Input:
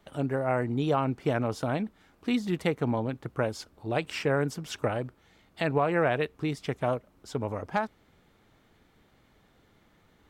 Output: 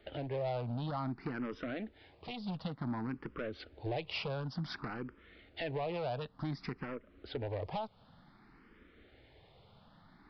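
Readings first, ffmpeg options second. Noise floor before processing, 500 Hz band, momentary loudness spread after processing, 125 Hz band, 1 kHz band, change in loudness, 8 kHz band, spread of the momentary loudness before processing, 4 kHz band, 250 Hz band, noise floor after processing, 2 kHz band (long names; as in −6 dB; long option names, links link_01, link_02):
−64 dBFS, −11.0 dB, 8 LU, −8.0 dB, −10.5 dB, −10.0 dB, below −20 dB, 8 LU, −5.0 dB, −9.5 dB, −64 dBFS, −11.0 dB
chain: -filter_complex "[0:a]acompressor=threshold=-33dB:ratio=8,aresample=16000,volume=35dB,asoftclip=hard,volume=-35dB,aresample=44100,aresample=11025,aresample=44100,asplit=2[link_01][link_02];[link_02]afreqshift=0.55[link_03];[link_01][link_03]amix=inputs=2:normalize=1,volume=4.5dB"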